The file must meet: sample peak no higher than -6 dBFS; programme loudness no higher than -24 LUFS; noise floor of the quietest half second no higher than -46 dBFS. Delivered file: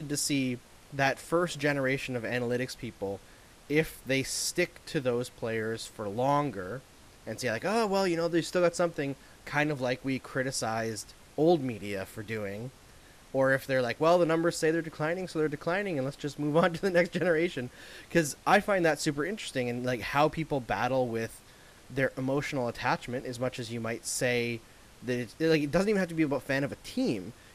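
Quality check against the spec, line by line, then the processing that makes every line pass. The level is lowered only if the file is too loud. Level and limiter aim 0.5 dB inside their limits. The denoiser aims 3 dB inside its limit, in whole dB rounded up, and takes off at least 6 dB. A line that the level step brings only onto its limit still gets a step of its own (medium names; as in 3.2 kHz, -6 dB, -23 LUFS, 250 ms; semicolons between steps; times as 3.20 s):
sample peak -12.0 dBFS: pass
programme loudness -30.0 LUFS: pass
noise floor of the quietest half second -54 dBFS: pass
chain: none needed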